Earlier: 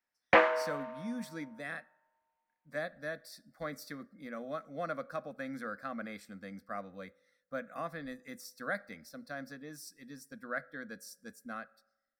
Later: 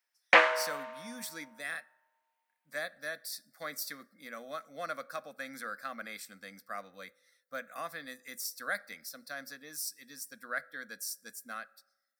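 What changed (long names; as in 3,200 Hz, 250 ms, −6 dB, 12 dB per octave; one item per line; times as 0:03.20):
background: send +11.0 dB
master: add spectral tilt +4 dB per octave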